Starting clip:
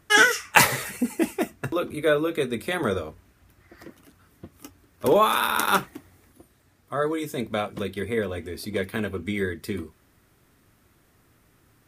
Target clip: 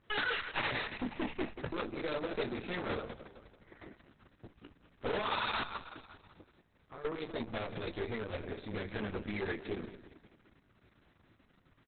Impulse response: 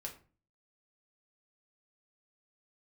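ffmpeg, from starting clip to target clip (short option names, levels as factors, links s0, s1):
-filter_complex "[0:a]flanger=delay=17:depth=2.4:speed=0.4,asettb=1/sr,asplit=3[s0][s1][s2];[s0]atrim=end=5.634[s3];[s1]atrim=start=5.63:end=7.05,asetpts=PTS-STARTPTS,afade=t=in:d=0.004:c=qsin,afade=t=out:st=1.416:d=0.004:c=qsin,acompressor=threshold=0.00631:ratio=3[s4];[s2]atrim=start=7.046[s5];[s3][s4]acrossfade=d=0.004:c1=hsin:c2=qsin[s6];[s6][s5]acrossfade=d=0.004:c1=qsin:c2=hsin,aeval=exprs='(tanh(44.7*val(0)+0.65)-tanh(0.65))/44.7':c=same,aecho=1:1:183|366|549|732|915:0.251|0.121|0.0579|0.0278|0.0133,volume=1.19" -ar 48000 -c:a libopus -b:a 6k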